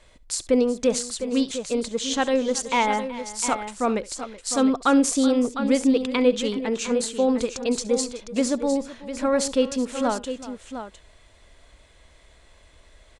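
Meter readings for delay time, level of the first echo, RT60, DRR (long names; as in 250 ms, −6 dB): 68 ms, −19.0 dB, no reverb audible, no reverb audible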